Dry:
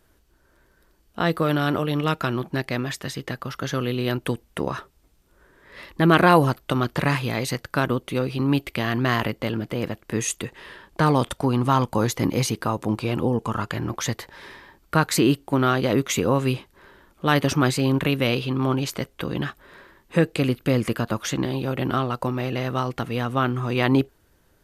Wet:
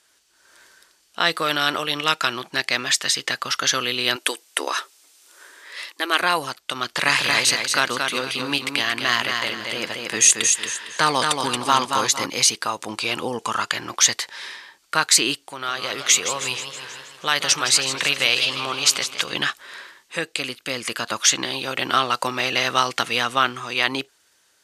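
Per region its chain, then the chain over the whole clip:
4.16–6.21 s: brick-wall FIR high-pass 250 Hz + treble shelf 9.3 kHz +9 dB
6.85–12.26 s: de-esser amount 45% + feedback delay 228 ms, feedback 31%, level -4.5 dB
15.46–19.33 s: compression 2:1, threshold -27 dBFS + peaking EQ 260 Hz -6 dB 0.79 oct + modulated delay 159 ms, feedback 58%, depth 178 cents, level -10.5 dB
whole clip: frequency weighting ITU-R 468; level rider; trim -1 dB

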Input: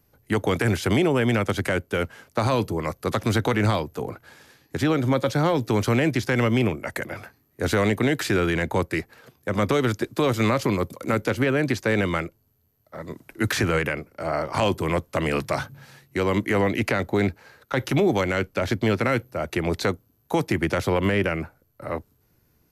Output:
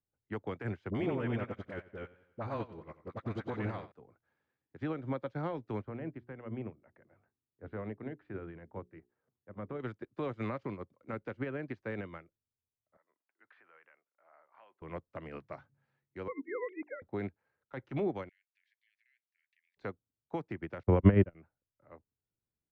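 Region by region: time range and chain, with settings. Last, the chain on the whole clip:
0.90–3.92 s: phase dispersion highs, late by 45 ms, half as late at 720 Hz + modulated delay 91 ms, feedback 50%, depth 56 cents, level -7.5 dB
5.82–9.80 s: tape spacing loss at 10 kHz 34 dB + hum notches 60/120/180/240/300/360/420 Hz
12.97–14.82 s: high-pass 950 Hz + distance through air 370 m
16.28–17.02 s: formants replaced by sine waves + hum notches 50/100/150/200/250/300/350/400/450 Hz
18.29–19.77 s: steep high-pass 1.7 kHz 96 dB/octave + compression 2.5:1, threshold -42 dBFS
20.83–21.35 s: gate -23 dBFS, range -29 dB + tilt EQ -3 dB/octave
whole clip: low-pass 2.1 kHz 12 dB/octave; upward expansion 2.5:1, over -30 dBFS; trim -3 dB

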